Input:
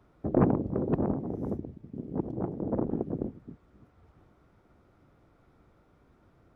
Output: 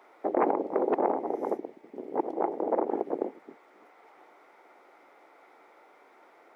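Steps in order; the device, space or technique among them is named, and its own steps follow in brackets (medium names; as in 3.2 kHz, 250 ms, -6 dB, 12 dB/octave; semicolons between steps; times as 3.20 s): laptop speaker (high-pass 380 Hz 24 dB/octave; peaking EQ 840 Hz +8 dB 0.44 oct; peaking EQ 2.1 kHz +11 dB 0.35 oct; peak limiter -22.5 dBFS, peak gain reduction 9.5 dB); trim +8 dB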